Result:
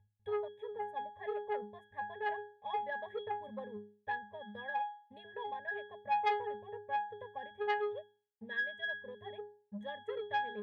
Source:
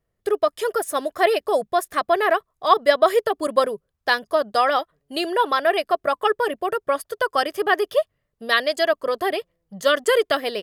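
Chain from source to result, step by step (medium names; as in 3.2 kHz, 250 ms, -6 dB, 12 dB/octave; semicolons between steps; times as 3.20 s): treble shelf 4.6 kHz -5.5 dB; in parallel at -3 dB: upward compressor, threshold -19 dBFS; on the sum: hysteresis with a dead band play -33 dBFS; static phaser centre 1.3 kHz, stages 6; pitch-class resonator G#, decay 0.43 s; transformer saturation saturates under 1.4 kHz; trim +1.5 dB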